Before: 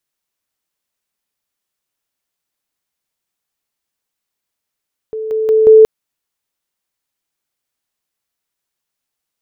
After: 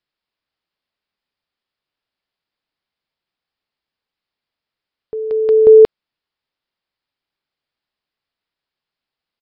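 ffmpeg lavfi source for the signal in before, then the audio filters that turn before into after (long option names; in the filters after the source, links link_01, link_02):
-f lavfi -i "aevalsrc='pow(10,(-19.5+6*floor(t/0.18))/20)*sin(2*PI*438*t)':duration=0.72:sample_rate=44100"
-af "aresample=11025,aresample=44100"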